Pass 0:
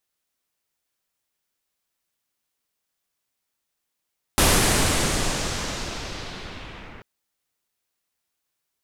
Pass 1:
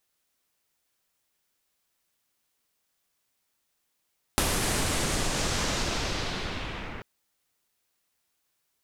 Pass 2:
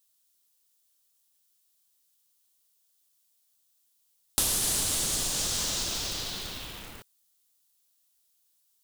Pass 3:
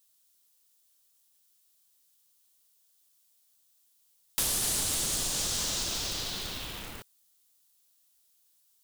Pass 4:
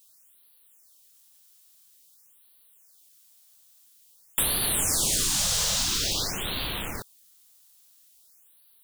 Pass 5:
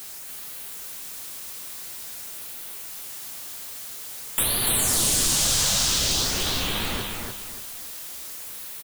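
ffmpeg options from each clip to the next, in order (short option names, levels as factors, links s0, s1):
-af "acompressor=threshold=0.0447:ratio=12,volume=1.5"
-af "acrusher=bits=4:mode=log:mix=0:aa=0.000001,aexciter=amount=3.4:drive=5.8:freq=3100,volume=0.376"
-filter_complex "[0:a]asplit=2[s0][s1];[s1]acompressor=threshold=0.0141:ratio=6,volume=1.12[s2];[s0][s2]amix=inputs=2:normalize=0,aeval=exprs='(mod(5.96*val(0)+1,2)-1)/5.96':c=same,volume=0.631"
-filter_complex "[0:a]asplit=2[s0][s1];[s1]alimiter=level_in=2.11:limit=0.0631:level=0:latency=1:release=15,volume=0.473,volume=1.12[s2];[s0][s2]amix=inputs=2:normalize=0,afftfilt=real='re*(1-between(b*sr/1024,290*pow(6800/290,0.5+0.5*sin(2*PI*0.49*pts/sr))/1.41,290*pow(6800/290,0.5+0.5*sin(2*PI*0.49*pts/sr))*1.41))':imag='im*(1-between(b*sr/1024,290*pow(6800/290,0.5+0.5*sin(2*PI*0.49*pts/sr))/1.41,290*pow(6800/290,0.5+0.5*sin(2*PI*0.49*pts/sr))*1.41))':win_size=1024:overlap=0.75,volume=1.41"
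-filter_complex "[0:a]aeval=exprs='val(0)+0.5*0.02*sgn(val(0))':c=same,flanger=delay=7.9:depth=8.4:regen=65:speed=0.42:shape=sinusoidal,asplit=2[s0][s1];[s1]aecho=0:1:290|580|870|1160:0.631|0.189|0.0568|0.017[s2];[s0][s2]amix=inputs=2:normalize=0,volume=1.78"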